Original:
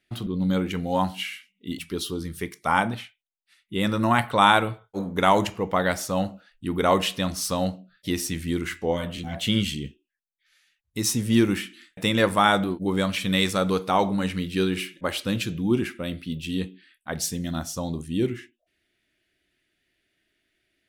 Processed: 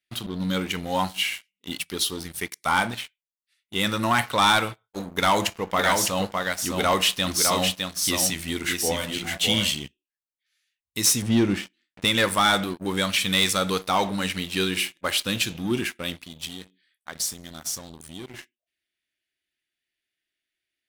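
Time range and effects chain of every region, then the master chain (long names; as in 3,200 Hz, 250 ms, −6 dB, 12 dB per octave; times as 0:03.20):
0:05.12–0:09.72: hum removal 170.5 Hz, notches 7 + single-tap delay 608 ms −4.5 dB
0:11.22–0:12.05: mu-law and A-law mismatch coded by A + low-pass filter 6,400 Hz + tilt shelving filter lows +6 dB, about 760 Hz
0:16.23–0:18.34: notch filter 2,700 Hz, Q 8.2 + downward compressor 3 to 1, threshold −33 dBFS
whole clip: tilt shelving filter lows −6.5 dB, about 1,300 Hz; leveller curve on the samples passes 3; level −8.5 dB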